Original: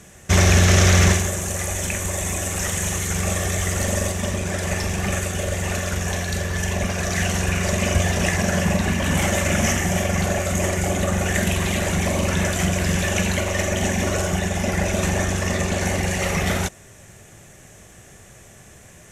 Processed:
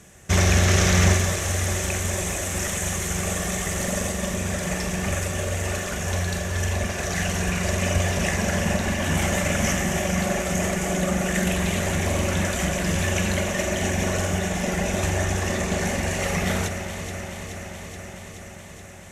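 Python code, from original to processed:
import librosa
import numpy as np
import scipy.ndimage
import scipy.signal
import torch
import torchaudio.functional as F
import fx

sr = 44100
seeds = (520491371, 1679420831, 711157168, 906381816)

y = fx.echo_alternate(x, sr, ms=213, hz=2100.0, feedback_pct=86, wet_db=-7.5)
y = F.gain(torch.from_numpy(y), -3.5).numpy()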